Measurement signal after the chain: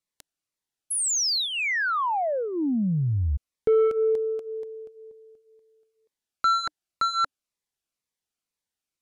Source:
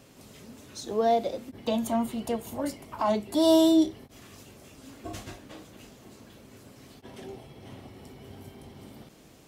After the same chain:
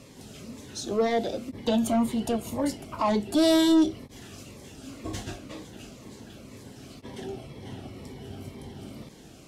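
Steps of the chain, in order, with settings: Bessel low-pass 10 kHz, order 2; saturation -21 dBFS; Shepard-style phaser falling 2 Hz; trim +6 dB

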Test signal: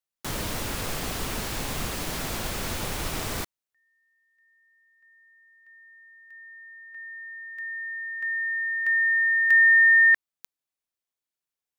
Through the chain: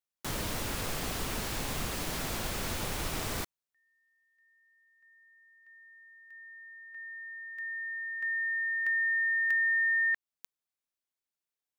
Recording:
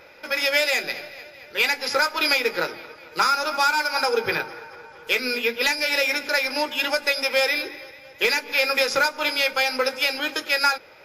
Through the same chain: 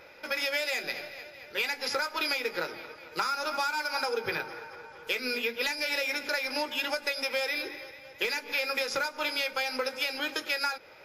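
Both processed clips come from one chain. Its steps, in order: compression 4:1, threshold -24 dBFS; trim -3.5 dB

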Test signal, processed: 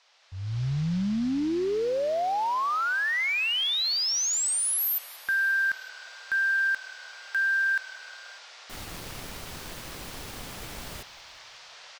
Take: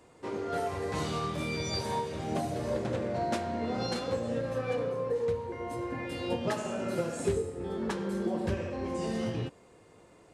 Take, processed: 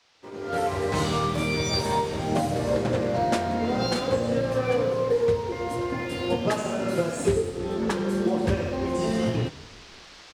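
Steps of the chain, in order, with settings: crossover distortion -58 dBFS; on a send: frequency-shifting echo 181 ms, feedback 58%, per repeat -38 Hz, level -21 dB; on the sum: band noise 550–5500 Hz -57 dBFS; level rider gain up to 16.5 dB; trim -8 dB

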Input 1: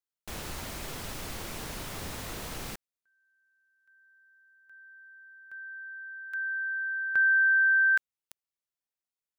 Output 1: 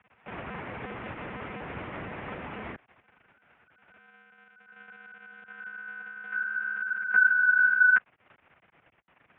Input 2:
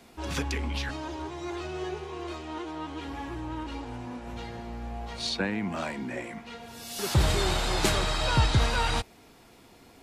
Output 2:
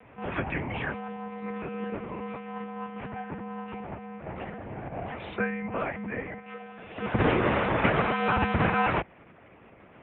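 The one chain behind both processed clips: crackle 110 per s -38 dBFS; monotone LPC vocoder at 8 kHz 270 Hz; mistuned SSB -63 Hz 150–2600 Hz; trim +4 dB

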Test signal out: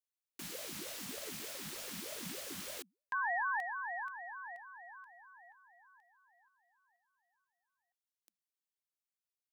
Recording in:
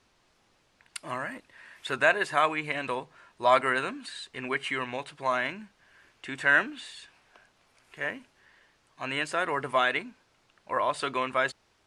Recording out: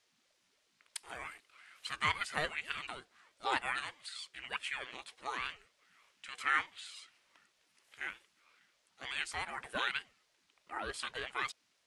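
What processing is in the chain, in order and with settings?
amplifier tone stack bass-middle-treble 10-0-10; ring modulator with a swept carrier 400 Hz, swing 55%, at 3.3 Hz

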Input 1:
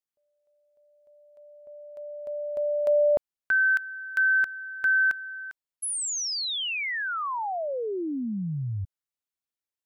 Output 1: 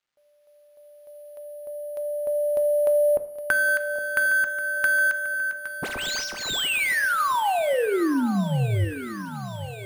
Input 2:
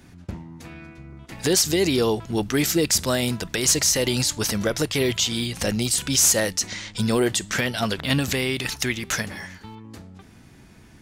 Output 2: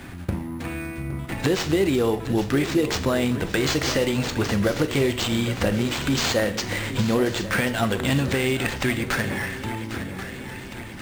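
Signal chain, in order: median filter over 9 samples; compression 3:1, threshold -31 dBFS; two-slope reverb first 0.54 s, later 3 s, from -27 dB, DRR 9 dB; sample-and-hold 4×; treble shelf 9.8 kHz -8.5 dB; shuffle delay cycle 1085 ms, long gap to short 3:1, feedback 46%, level -13 dB; tape noise reduction on one side only encoder only; trim +9 dB

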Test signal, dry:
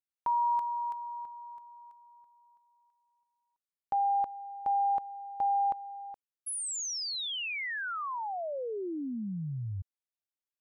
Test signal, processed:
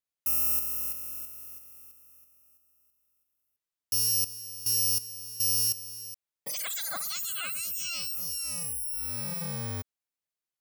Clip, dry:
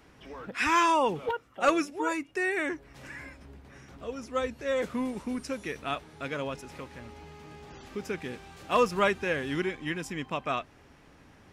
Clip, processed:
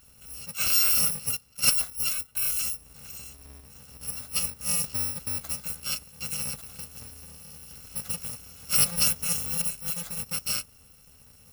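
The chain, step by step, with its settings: bit-reversed sample order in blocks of 128 samples; trim +1.5 dB

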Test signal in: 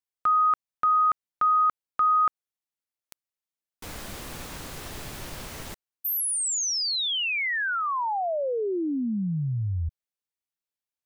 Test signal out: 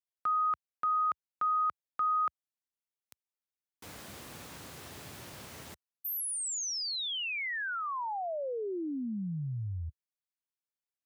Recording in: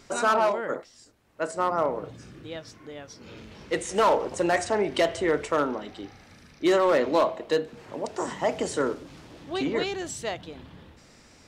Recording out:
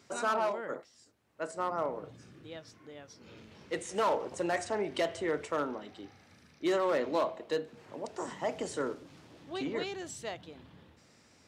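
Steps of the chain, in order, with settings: high-pass 74 Hz 24 dB/octave; trim -8 dB

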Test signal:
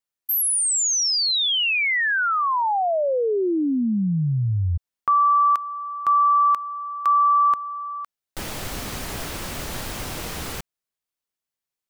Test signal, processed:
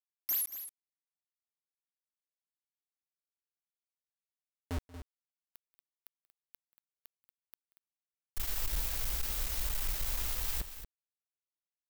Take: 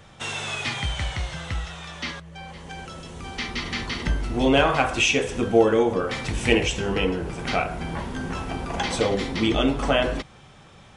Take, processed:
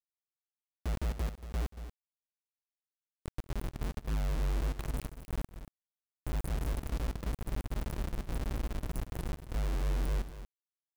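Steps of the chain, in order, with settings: inverse Chebyshev band-stop 140–7700 Hz, stop band 50 dB; companded quantiser 2-bit; multi-tap echo 183/233 ms -20/-11.5 dB; trim -5 dB

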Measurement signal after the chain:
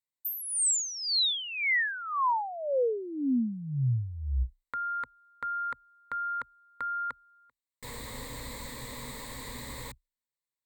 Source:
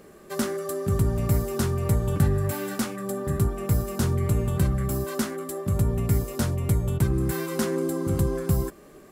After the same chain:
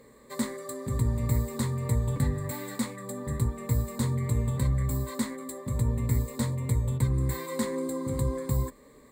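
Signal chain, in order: rippled EQ curve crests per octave 1, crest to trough 14 dB; trim -6.5 dB

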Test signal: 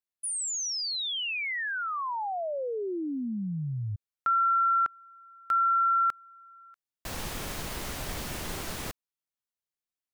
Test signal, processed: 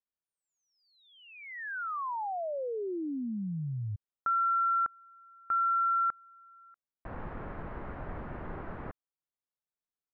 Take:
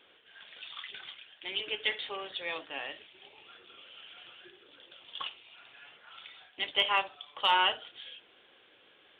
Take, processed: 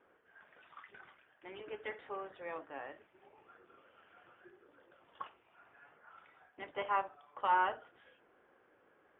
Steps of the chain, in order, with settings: low-pass 1.6 kHz 24 dB/octave; trim -2.5 dB

